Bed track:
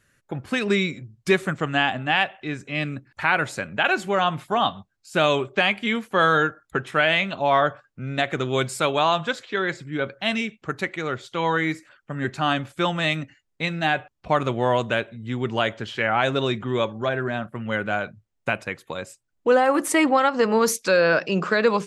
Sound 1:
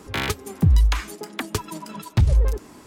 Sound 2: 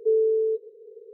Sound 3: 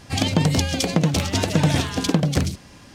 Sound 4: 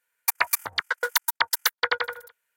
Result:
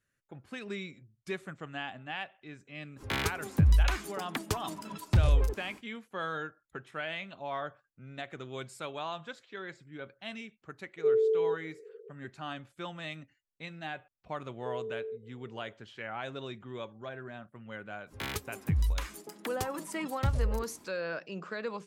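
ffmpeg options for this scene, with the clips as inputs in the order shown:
ffmpeg -i bed.wav -i cue0.wav -i cue1.wav -filter_complex "[1:a]asplit=2[link_01][link_02];[2:a]asplit=2[link_03][link_04];[0:a]volume=-17.5dB[link_05];[link_04]acompressor=threshold=-25dB:ratio=6:attack=3.2:release=140:knee=1:detection=peak[link_06];[link_02]highshelf=frequency=8500:gain=7.5[link_07];[link_01]atrim=end=2.86,asetpts=PTS-STARTPTS,volume=-6.5dB,afade=type=in:duration=0.05,afade=type=out:start_time=2.81:duration=0.05,adelay=2960[link_08];[link_03]atrim=end=1.13,asetpts=PTS-STARTPTS,volume=-4.5dB,afade=type=in:duration=0.004:curve=hsin,afade=type=out:start_time=1.126:duration=0.004:curve=hsin,adelay=484218S[link_09];[link_06]atrim=end=1.13,asetpts=PTS-STARTPTS,volume=-11.5dB,afade=type=in:duration=0.004:curve=hsin,afade=type=out:start_time=1.126:duration=0.004:curve=hsin,adelay=643860S[link_10];[link_07]atrim=end=2.86,asetpts=PTS-STARTPTS,volume=-12dB,afade=type=in:duration=0.1,afade=type=out:start_time=2.76:duration=0.1,adelay=18060[link_11];[link_05][link_08][link_09][link_10][link_11]amix=inputs=5:normalize=0" out.wav

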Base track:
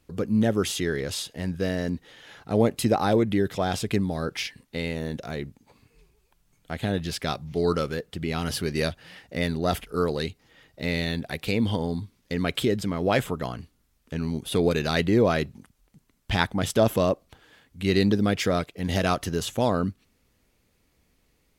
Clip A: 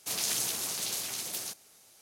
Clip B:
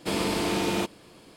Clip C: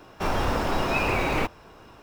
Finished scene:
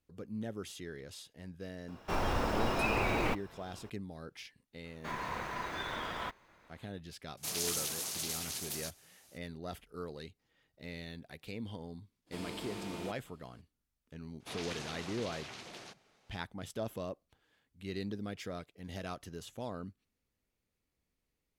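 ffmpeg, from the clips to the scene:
ffmpeg -i bed.wav -i cue0.wav -i cue1.wav -i cue2.wav -filter_complex "[3:a]asplit=2[link_01][link_02];[1:a]asplit=2[link_03][link_04];[0:a]volume=-18dB[link_05];[link_02]aeval=exprs='val(0)*sin(2*PI*1000*n/s)':channel_layout=same[link_06];[link_04]lowpass=2700[link_07];[link_01]atrim=end=2.02,asetpts=PTS-STARTPTS,volume=-7dB,afade=type=in:duration=0.004:curve=hsin,afade=type=out:start_time=2.016:duration=0.004:curve=hsin,adelay=1880[link_08];[link_06]atrim=end=2.02,asetpts=PTS-STARTPTS,volume=-12dB,afade=type=in:duration=0.004:curve=hsin,afade=type=out:start_time=2.016:duration=0.004:curve=hsin,adelay=4840[link_09];[link_03]atrim=end=2.01,asetpts=PTS-STARTPTS,volume=-4.5dB,afade=type=in:duration=0.004:curve=hsin,afade=type=out:start_time=2.006:duration=0.004:curve=hsin,adelay=7370[link_10];[2:a]atrim=end=1.36,asetpts=PTS-STARTPTS,volume=-17dB,afade=type=in:duration=0.02,afade=type=out:start_time=1.34:duration=0.02,adelay=12260[link_11];[link_07]atrim=end=2.01,asetpts=PTS-STARTPTS,volume=-2.5dB,afade=type=in:duration=0.004:curve=hsin,afade=type=out:start_time=2.006:duration=0.004:curve=hsin,adelay=14400[link_12];[link_05][link_08][link_09][link_10][link_11][link_12]amix=inputs=6:normalize=0" out.wav

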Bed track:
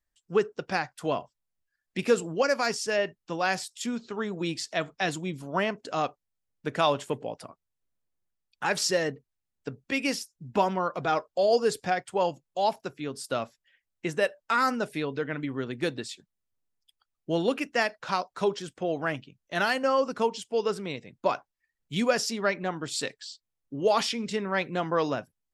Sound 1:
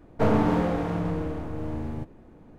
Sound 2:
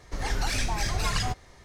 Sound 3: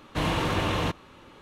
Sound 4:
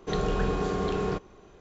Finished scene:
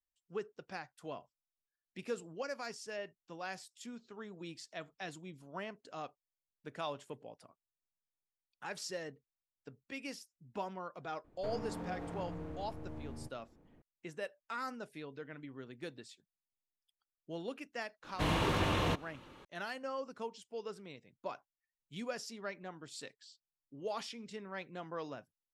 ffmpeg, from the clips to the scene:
ffmpeg -i bed.wav -i cue0.wav -i cue1.wav -i cue2.wav -filter_complex "[0:a]volume=-16dB[link_01];[1:a]acompressor=threshold=-24dB:ratio=6:attack=3.2:release=140:knee=1:detection=peak,atrim=end=2.58,asetpts=PTS-STARTPTS,volume=-14dB,afade=type=in:duration=0.004:curve=hsin,afade=type=out:start_time=2.576:duration=0.004:curve=hsin,adelay=11240[link_02];[3:a]atrim=end=1.41,asetpts=PTS-STARTPTS,volume=-5.5dB,afade=type=in:duration=0.004:curve=hsin,afade=type=out:start_time=1.406:duration=0.004:curve=hsin,adelay=18040[link_03];[link_01][link_02][link_03]amix=inputs=3:normalize=0" out.wav

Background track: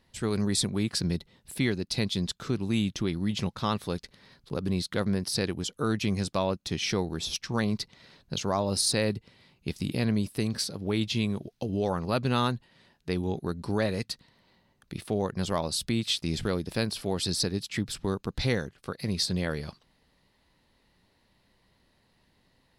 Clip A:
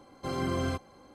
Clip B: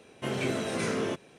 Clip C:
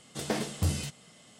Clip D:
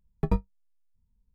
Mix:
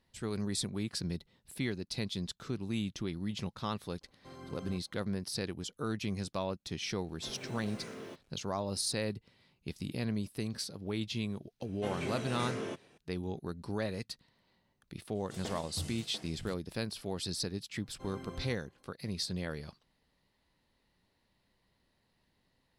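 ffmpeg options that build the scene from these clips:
ffmpeg -i bed.wav -i cue0.wav -i cue1.wav -i cue2.wav -filter_complex "[1:a]asplit=2[link_01][link_02];[2:a]asplit=2[link_03][link_04];[0:a]volume=-8dB[link_05];[link_03]acrusher=bits=7:mix=0:aa=0.5[link_06];[link_04]aresample=32000,aresample=44100[link_07];[3:a]aecho=1:1:693:0.376[link_08];[link_02]bandreject=frequency=4700:width=9.2[link_09];[link_01]atrim=end=1.14,asetpts=PTS-STARTPTS,volume=-17.5dB,afade=type=in:duration=0.004:curve=hsin,afade=type=out:start_time=1.136:duration=0.004:curve=hsin,adelay=176841S[link_10];[link_06]atrim=end=1.38,asetpts=PTS-STARTPTS,volume=-15.5dB,afade=type=in:duration=0.004:curve=hsin,afade=type=out:start_time=1.376:duration=0.004:curve=hsin,adelay=7000[link_11];[link_07]atrim=end=1.38,asetpts=PTS-STARTPTS,volume=-8dB,afade=type=in:duration=0.004:curve=hsin,afade=type=out:start_time=1.376:duration=0.004:curve=hsin,adelay=11600[link_12];[link_08]atrim=end=1.39,asetpts=PTS-STARTPTS,volume=-12dB,afade=type=in:duration=0.004:curve=hsin,afade=type=out:start_time=1.386:duration=0.004:curve=hsin,adelay=15150[link_13];[link_09]atrim=end=1.14,asetpts=PTS-STARTPTS,volume=-16dB,afade=type=in:duration=0.004:curve=hsin,afade=type=out:start_time=1.136:duration=0.004:curve=hsin,adelay=17760[link_14];[link_05][link_10][link_11][link_12][link_13][link_14]amix=inputs=6:normalize=0" out.wav

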